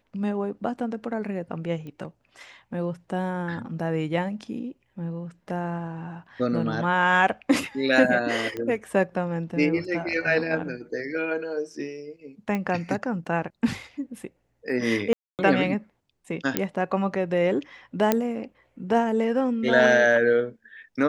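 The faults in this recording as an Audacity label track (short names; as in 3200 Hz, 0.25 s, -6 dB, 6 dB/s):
1.870000	1.870000	pop -29 dBFS
8.570000	8.570000	pop -19 dBFS
12.550000	12.550000	pop -16 dBFS
15.130000	15.390000	gap 0.258 s
16.570000	16.570000	pop -6 dBFS
18.120000	18.120000	pop -6 dBFS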